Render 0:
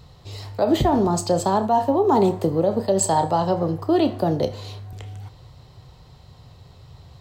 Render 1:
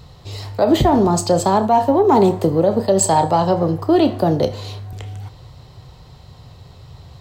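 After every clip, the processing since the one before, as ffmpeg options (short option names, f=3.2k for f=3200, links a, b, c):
-af "acontrast=28"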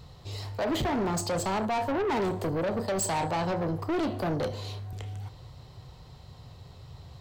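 -af "asoftclip=type=tanh:threshold=-19dB,volume=-6.5dB"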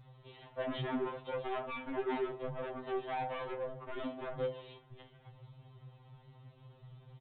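-af "aresample=8000,aresample=44100,afftfilt=real='re*2.45*eq(mod(b,6),0)':imag='im*2.45*eq(mod(b,6),0)':win_size=2048:overlap=0.75,volume=-6.5dB"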